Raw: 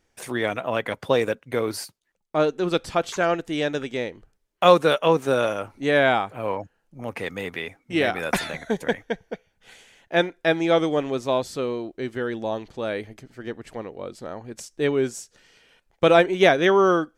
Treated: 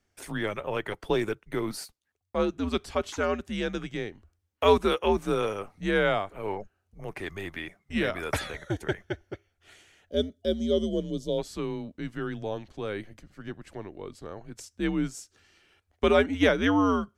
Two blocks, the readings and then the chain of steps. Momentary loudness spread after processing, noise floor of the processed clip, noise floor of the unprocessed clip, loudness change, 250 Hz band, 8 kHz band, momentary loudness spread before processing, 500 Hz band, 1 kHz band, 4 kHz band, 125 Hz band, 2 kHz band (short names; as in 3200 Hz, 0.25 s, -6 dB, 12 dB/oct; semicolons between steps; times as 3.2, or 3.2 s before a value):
19 LU, -76 dBFS, -72 dBFS, -6.0 dB, -2.5 dB, -5.5 dB, 18 LU, -6.5 dB, -7.5 dB, -5.5 dB, -3.0 dB, -6.5 dB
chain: spectral gain 10.1–11.38, 780–3000 Hz -19 dB; frequency shift -100 Hz; gain -5.5 dB